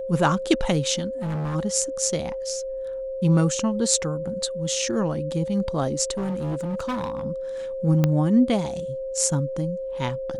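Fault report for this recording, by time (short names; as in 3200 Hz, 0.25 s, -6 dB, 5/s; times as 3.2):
tone 530 Hz -28 dBFS
1.21–1.56 clipped -25 dBFS
6.17–7.25 clipped -23.5 dBFS
8.04 pop -8 dBFS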